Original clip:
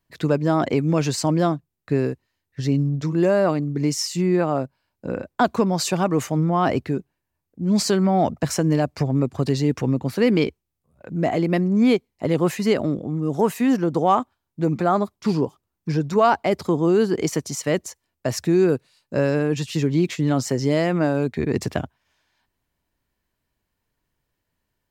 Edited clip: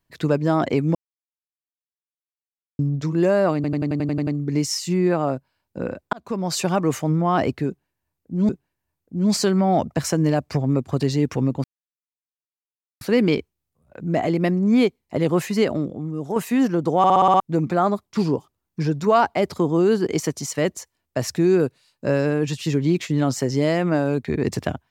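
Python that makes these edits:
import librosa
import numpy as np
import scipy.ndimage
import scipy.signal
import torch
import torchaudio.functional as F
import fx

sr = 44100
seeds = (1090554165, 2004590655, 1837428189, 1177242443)

y = fx.edit(x, sr, fx.silence(start_s=0.95, length_s=1.84),
    fx.stutter(start_s=3.55, slice_s=0.09, count=9),
    fx.fade_in_span(start_s=5.41, length_s=0.46),
    fx.repeat(start_s=6.95, length_s=0.82, count=2),
    fx.insert_silence(at_s=10.1, length_s=1.37),
    fx.fade_out_to(start_s=12.71, length_s=0.74, floor_db=-7.0),
    fx.stutter_over(start_s=14.07, slice_s=0.06, count=7), tone=tone)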